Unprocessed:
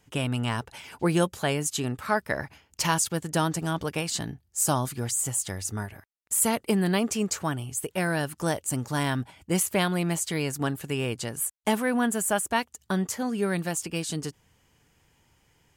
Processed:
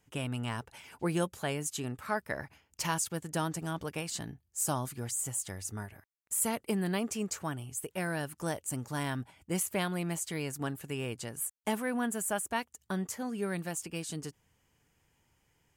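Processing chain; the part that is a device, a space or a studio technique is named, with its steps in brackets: exciter from parts (in parallel at -11 dB: HPF 3600 Hz 12 dB/oct + soft clip -23.5 dBFS, distortion -12 dB + HPF 2200 Hz 24 dB/oct); on the sum: gain -7.5 dB

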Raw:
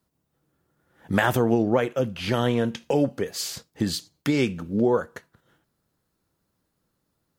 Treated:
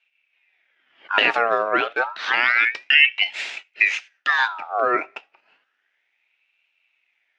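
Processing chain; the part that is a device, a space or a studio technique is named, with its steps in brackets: voice changer toy (ring modulator with a swept carrier 1700 Hz, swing 50%, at 0.3 Hz; speaker cabinet 440–4600 Hz, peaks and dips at 500 Hz -4 dB, 1100 Hz -9 dB, 2600 Hz +5 dB, 4400 Hz -5 dB); gain +7.5 dB

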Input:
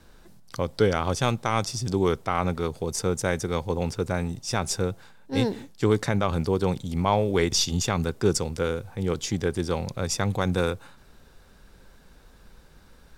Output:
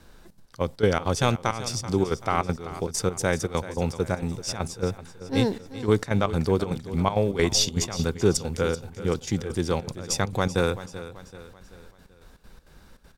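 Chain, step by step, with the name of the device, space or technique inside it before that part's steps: trance gate with a delay (step gate "xxxx.x..xx.xx." 199 bpm -12 dB; feedback echo 0.384 s, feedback 46%, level -14.5 dB); gain +1.5 dB

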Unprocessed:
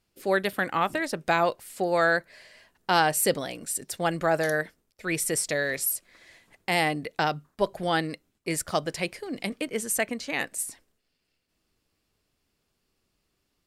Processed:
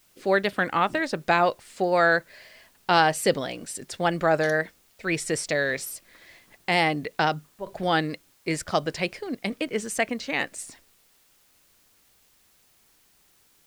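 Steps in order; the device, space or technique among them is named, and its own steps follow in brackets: worn cassette (LPF 6100 Hz 12 dB/oct; wow and flutter; level dips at 7.57/8.35/9.35, 91 ms -13 dB; white noise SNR 35 dB); gain +2.5 dB

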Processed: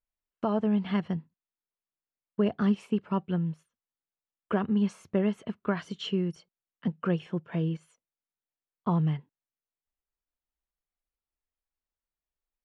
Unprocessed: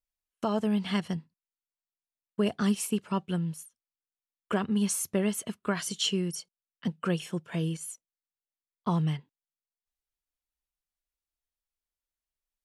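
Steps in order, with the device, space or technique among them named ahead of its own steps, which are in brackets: phone in a pocket (LPF 3300 Hz 12 dB/oct; high shelf 2400 Hz -10 dB); gain +1.5 dB

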